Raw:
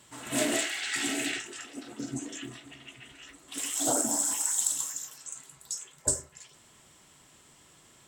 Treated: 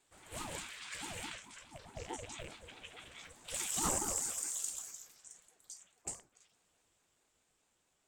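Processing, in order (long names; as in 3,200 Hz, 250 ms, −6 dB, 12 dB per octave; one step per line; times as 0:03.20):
loose part that buzzes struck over −44 dBFS, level −31 dBFS
source passing by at 0:03.13, 5 m/s, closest 3.3 metres
ring modulator whose carrier an LFO sweeps 410 Hz, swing 55%, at 4.7 Hz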